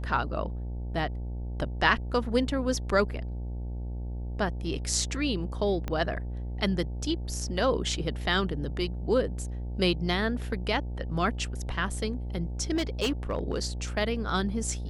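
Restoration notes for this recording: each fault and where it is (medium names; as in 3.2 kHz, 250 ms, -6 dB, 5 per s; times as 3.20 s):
buzz 60 Hz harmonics 15 -34 dBFS
5.88 s: pop -18 dBFS
12.75–13.60 s: clipped -22.5 dBFS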